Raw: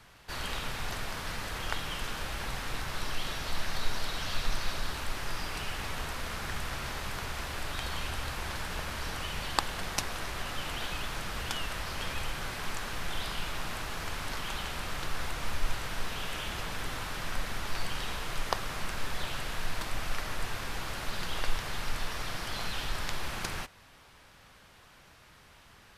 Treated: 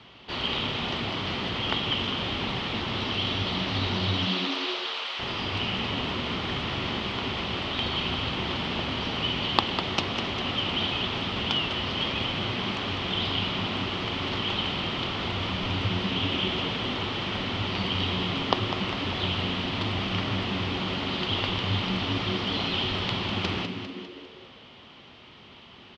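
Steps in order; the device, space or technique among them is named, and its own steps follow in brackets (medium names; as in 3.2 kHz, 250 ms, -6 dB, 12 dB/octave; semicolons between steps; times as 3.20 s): 4.02–5.18 s: high-pass 300 Hz -> 1 kHz 12 dB/octave; frequency-shifting delay pedal into a guitar cabinet (frequency-shifting echo 200 ms, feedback 52%, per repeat +89 Hz, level -9 dB; cabinet simulation 84–4300 Hz, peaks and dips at 240 Hz +7 dB, 370 Hz +6 dB, 1.6 kHz -9 dB, 3.1 kHz +9 dB); trim +6 dB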